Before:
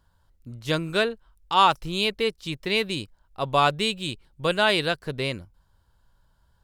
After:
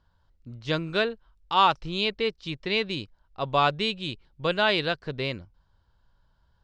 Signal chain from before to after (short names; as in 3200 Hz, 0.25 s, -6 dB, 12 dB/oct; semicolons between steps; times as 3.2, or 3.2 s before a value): LPF 5600 Hz 24 dB/oct; gain -2 dB